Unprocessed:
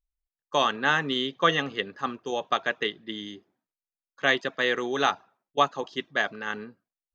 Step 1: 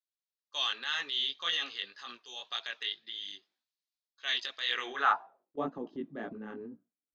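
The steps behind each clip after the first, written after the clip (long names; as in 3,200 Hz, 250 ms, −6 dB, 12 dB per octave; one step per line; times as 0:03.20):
band-pass filter sweep 4,100 Hz → 260 Hz, 0:04.64–0:05.64
chorus effect 1.9 Hz, delay 16.5 ms, depth 5 ms
transient designer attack −3 dB, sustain +7 dB
level +5.5 dB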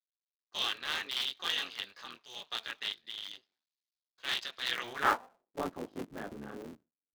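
sub-harmonics by changed cycles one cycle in 3, muted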